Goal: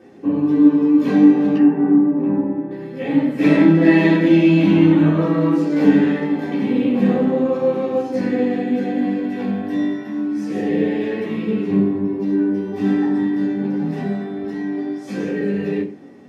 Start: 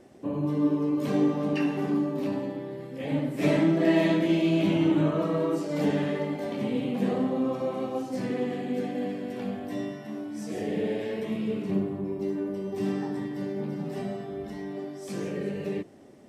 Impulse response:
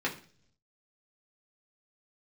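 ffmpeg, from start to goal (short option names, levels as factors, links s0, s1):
-filter_complex "[0:a]asettb=1/sr,asplit=3[s0][s1][s2];[s0]atrim=end=1.564[s3];[s1]atrim=start=1.56:end=2.71,asetpts=PTS-STARTPTS,afade=t=in:d=0.004:c=qsin,afade=t=out:st=1.146:d=0.004:c=qsin,lowpass=1100[s4];[s2]atrim=start=2.706[s5];[s3][s4]acrossfade=d=0.004:c1=hsin:c2=qsin[s6];[s6][s5]acrossfade=d=0.004:c1=qsin:c2=hsin[s7];[1:a]atrim=start_sample=2205,afade=t=out:st=0.21:d=0.01,atrim=end_sample=9702[s8];[s7][s8]afir=irnorm=-1:irlink=0,volume=1.12"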